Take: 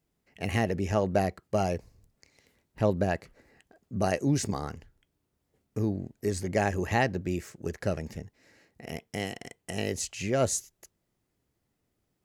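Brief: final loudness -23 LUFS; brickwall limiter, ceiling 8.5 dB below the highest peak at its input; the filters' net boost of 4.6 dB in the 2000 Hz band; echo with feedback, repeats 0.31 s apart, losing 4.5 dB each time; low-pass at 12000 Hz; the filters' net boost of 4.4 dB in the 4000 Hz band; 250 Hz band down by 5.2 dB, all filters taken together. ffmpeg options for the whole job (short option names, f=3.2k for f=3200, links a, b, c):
-af "lowpass=12k,equalizer=f=250:t=o:g=-7.5,equalizer=f=2k:t=o:g=4.5,equalizer=f=4k:t=o:g=4.5,alimiter=limit=-17dB:level=0:latency=1,aecho=1:1:310|620|930|1240|1550|1860|2170|2480|2790:0.596|0.357|0.214|0.129|0.0772|0.0463|0.0278|0.0167|0.01,volume=9dB"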